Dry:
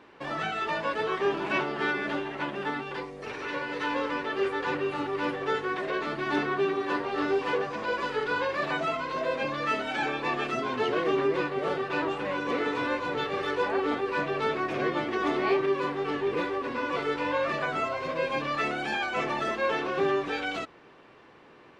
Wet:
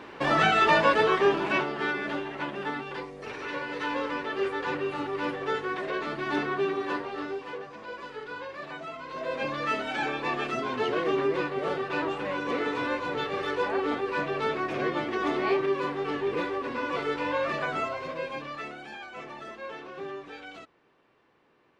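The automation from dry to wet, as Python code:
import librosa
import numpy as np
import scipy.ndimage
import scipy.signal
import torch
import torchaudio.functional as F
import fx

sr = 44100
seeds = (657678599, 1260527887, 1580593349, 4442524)

y = fx.gain(x, sr, db=fx.line((0.78, 9.5), (1.78, -1.0), (6.88, -1.0), (7.46, -10.0), (8.91, -10.0), (9.44, -0.5), (17.79, -0.5), (18.9, -12.0)))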